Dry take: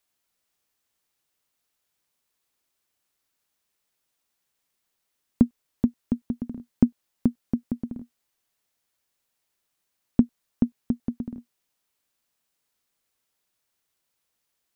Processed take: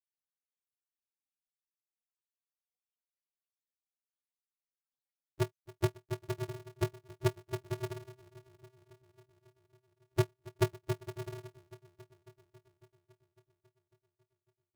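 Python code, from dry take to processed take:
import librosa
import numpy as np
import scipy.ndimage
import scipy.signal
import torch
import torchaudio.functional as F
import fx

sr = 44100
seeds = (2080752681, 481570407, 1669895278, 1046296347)

y = x * (1.0 - 0.62 / 2.0 + 0.62 / 2.0 * np.cos(2.0 * np.pi * 1.4 * (np.arange(len(x)) / sr)))
y = fx.echo_bbd(y, sr, ms=275, stages=2048, feedback_pct=75, wet_db=-21.0)
y = fx.spec_topn(y, sr, count=2)
y = y * np.sign(np.sin(2.0 * np.pi * 130.0 * np.arange(len(y)) / sr))
y = y * 10.0 ** (-2.0 / 20.0)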